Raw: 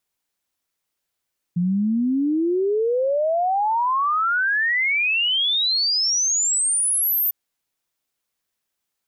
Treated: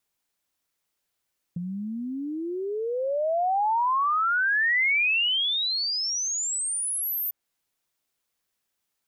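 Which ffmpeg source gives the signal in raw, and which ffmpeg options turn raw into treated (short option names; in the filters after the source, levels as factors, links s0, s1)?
-f lavfi -i "aevalsrc='0.133*clip(min(t,5.75-t)/0.01,0,1)*sin(2*PI*170*5.75/log(14000/170)*(exp(log(14000/170)*t/5.75)-1))':d=5.75:s=44100"
-filter_complex "[0:a]acrossover=split=720|2400[s0][s1][s2];[s0]acompressor=threshold=0.02:ratio=4[s3];[s1]acompressor=threshold=0.0562:ratio=4[s4];[s2]acompressor=threshold=0.0355:ratio=4[s5];[s3][s4][s5]amix=inputs=3:normalize=0"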